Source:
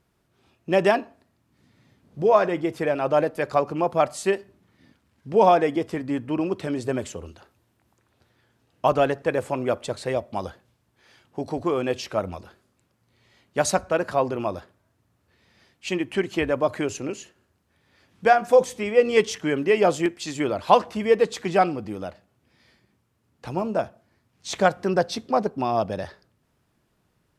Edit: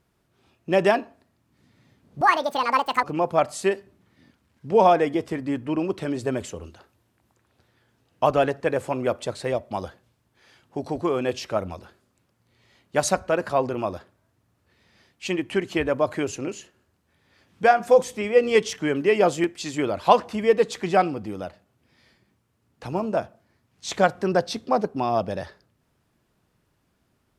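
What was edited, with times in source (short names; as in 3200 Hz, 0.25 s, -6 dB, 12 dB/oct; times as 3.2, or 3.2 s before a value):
2.21–3.65 speed 175%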